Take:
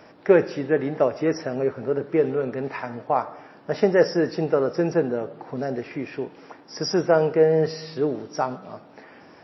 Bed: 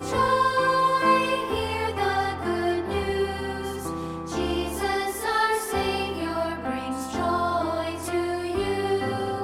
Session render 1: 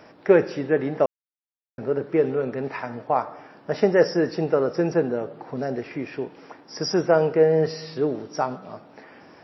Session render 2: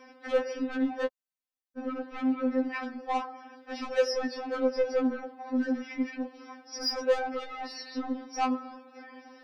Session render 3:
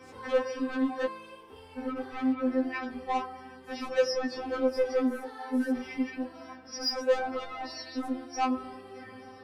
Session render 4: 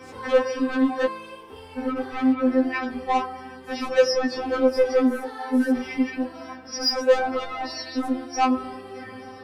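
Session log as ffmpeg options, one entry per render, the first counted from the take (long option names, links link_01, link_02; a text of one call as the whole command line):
ffmpeg -i in.wav -filter_complex "[0:a]asplit=3[link_01][link_02][link_03];[link_01]atrim=end=1.06,asetpts=PTS-STARTPTS,afade=type=out:start_time=1.056:duration=0.004:curve=hsin[link_04];[link_02]atrim=start=1.06:end=1.78,asetpts=PTS-STARTPTS,volume=0[link_05];[link_03]atrim=start=1.78,asetpts=PTS-STARTPTS,afade=type=in:duration=0.004:curve=hsin[link_06];[link_04][link_05][link_06]concat=n=3:v=0:a=1" out.wav
ffmpeg -i in.wav -af "asoftclip=type=tanh:threshold=-21.5dB,afftfilt=real='re*3.46*eq(mod(b,12),0)':imag='im*3.46*eq(mod(b,12),0)':win_size=2048:overlap=0.75" out.wav
ffmpeg -i in.wav -i bed.wav -filter_complex "[1:a]volume=-23.5dB[link_01];[0:a][link_01]amix=inputs=2:normalize=0" out.wav
ffmpeg -i in.wav -af "volume=7.5dB" out.wav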